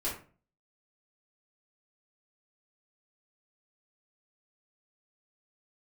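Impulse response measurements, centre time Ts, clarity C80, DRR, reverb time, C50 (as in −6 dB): 32 ms, 11.0 dB, −7.5 dB, 0.40 s, 6.0 dB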